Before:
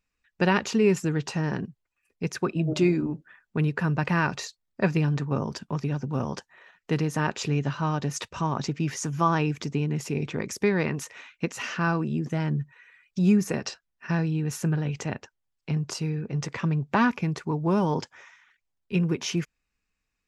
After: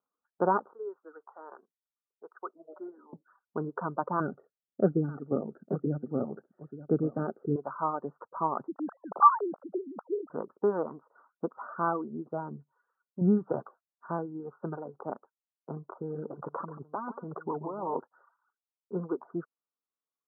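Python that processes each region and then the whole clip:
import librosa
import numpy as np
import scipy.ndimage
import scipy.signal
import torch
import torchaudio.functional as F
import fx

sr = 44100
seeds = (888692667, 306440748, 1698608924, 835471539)

y = fx.chain(x, sr, fx.highpass(hz=460.0, slope=24),
    fx.peak_eq(hz=650.0, db=-11.0, octaves=2.2), at=(0.73, 3.13))
y = fx.chain(y, sr, fx.low_shelf(hz=470.0, db=10.5),
    fx.fixed_phaser(hz=2400.0, stages=4),
    fx.echo_single(ms=884, db=-11.5), at=(4.2, 7.56))
y = fx.chain(y, sr, fx.sine_speech(),
    fx.low_shelf(hz=200.0, db=-11.5), at=(8.68, 10.3))
y = fx.chain(y, sr, fx.peak_eq(hz=130.0, db=14.0, octaves=1.2),
    fx.notch(hz=1100.0, q=7.6), at=(13.21, 13.62))
y = fx.chain(y, sr, fx.over_compress(threshold_db=-28.0, ratio=-1.0),
    fx.echo_single(ms=137, db=-7.5),
    fx.doppler_dist(depth_ms=0.11), at=(15.96, 17.97))
y = scipy.signal.sosfilt(scipy.signal.butter(2, 390.0, 'highpass', fs=sr, output='sos'), y)
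y = fx.dereverb_blind(y, sr, rt60_s=1.3)
y = scipy.signal.sosfilt(scipy.signal.butter(16, 1400.0, 'lowpass', fs=sr, output='sos'), y)
y = F.gain(torch.from_numpy(y), 1.5).numpy()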